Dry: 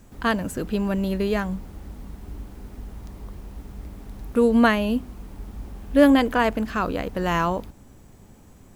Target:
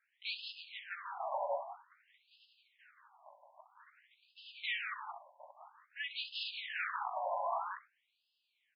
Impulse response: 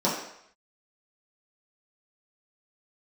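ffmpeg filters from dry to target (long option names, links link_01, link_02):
-af "agate=range=-14dB:threshold=-34dB:ratio=16:detection=peak,equalizer=frequency=68:width_type=o:width=2.4:gain=9.5,areverse,acompressor=threshold=-24dB:ratio=10,areverse,flanger=delay=15.5:depth=3:speed=0.68,aresample=16000,aeval=exprs='0.0251*(abs(mod(val(0)/0.0251+3,4)-2)-1)':channel_layout=same,aresample=44100,aecho=1:1:64.14|172:0.316|0.562,afftfilt=real='re*between(b*sr/1024,740*pow(3700/740,0.5+0.5*sin(2*PI*0.51*pts/sr))/1.41,740*pow(3700/740,0.5+0.5*sin(2*PI*0.51*pts/sr))*1.41)':imag='im*between(b*sr/1024,740*pow(3700/740,0.5+0.5*sin(2*PI*0.51*pts/sr))/1.41,740*pow(3700/740,0.5+0.5*sin(2*PI*0.51*pts/sr))*1.41)':win_size=1024:overlap=0.75,volume=5.5dB"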